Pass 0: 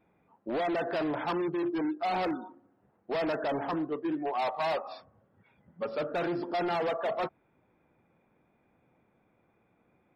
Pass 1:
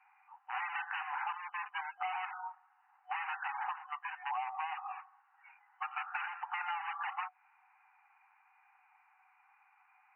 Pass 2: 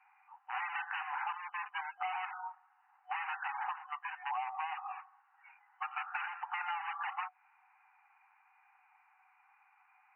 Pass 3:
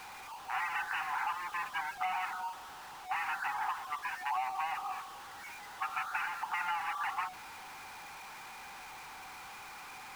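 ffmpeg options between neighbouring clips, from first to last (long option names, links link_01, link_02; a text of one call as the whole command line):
ffmpeg -i in.wav -af "afftfilt=real='re*between(b*sr/4096,740,3000)':imag='im*between(b*sr/4096,740,3000)':win_size=4096:overlap=0.75,acompressor=threshold=-43dB:ratio=16,volume=8.5dB" out.wav
ffmpeg -i in.wav -af anull out.wav
ffmpeg -i in.wav -af "aeval=exprs='val(0)+0.5*0.00596*sgn(val(0))':channel_layout=same,volume=1.5dB" out.wav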